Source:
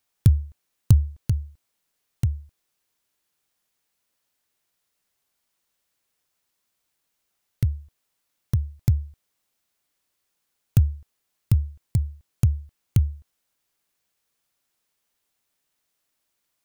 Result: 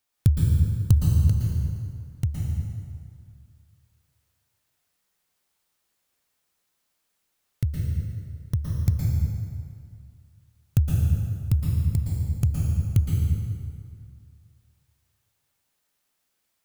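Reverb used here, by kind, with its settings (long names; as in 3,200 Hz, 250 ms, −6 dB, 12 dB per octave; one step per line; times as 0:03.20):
dense smooth reverb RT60 2.2 s, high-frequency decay 0.7×, pre-delay 105 ms, DRR −3.5 dB
level −3 dB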